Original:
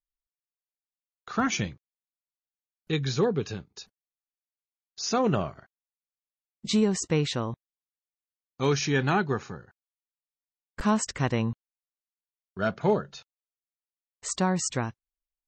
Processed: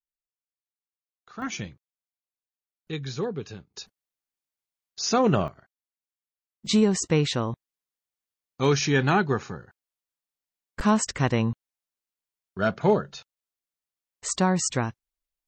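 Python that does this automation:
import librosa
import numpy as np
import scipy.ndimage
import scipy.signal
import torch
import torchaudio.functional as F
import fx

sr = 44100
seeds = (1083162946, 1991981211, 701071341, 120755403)

y = fx.gain(x, sr, db=fx.steps((0.0, -11.5), (1.42, -5.0), (3.74, 3.5), (5.48, -4.5), (6.66, 3.0)))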